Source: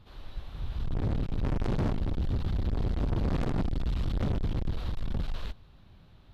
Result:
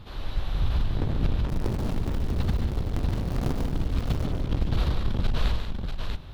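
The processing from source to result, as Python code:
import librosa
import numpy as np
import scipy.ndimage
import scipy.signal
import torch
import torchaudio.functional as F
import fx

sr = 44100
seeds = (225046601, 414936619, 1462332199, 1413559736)

y = fx.dead_time(x, sr, dead_ms=0.17, at=(1.49, 4.25))
y = fx.over_compress(y, sr, threshold_db=-31.0, ratio=-0.5)
y = fx.echo_multitap(y, sr, ms=(143, 192, 642), db=(-7.5, -9.5, -4.5))
y = y * librosa.db_to_amplitude(6.5)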